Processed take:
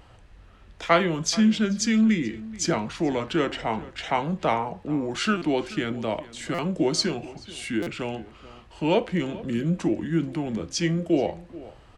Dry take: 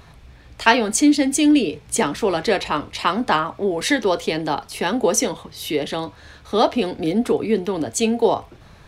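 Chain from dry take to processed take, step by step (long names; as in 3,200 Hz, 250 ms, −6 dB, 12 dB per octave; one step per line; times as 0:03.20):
wrong playback speed 45 rpm record played at 33 rpm
slap from a distant wall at 74 metres, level −18 dB
buffer that repeats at 0:05.37/0:06.54/0:07.82, samples 256, times 7
level −5.5 dB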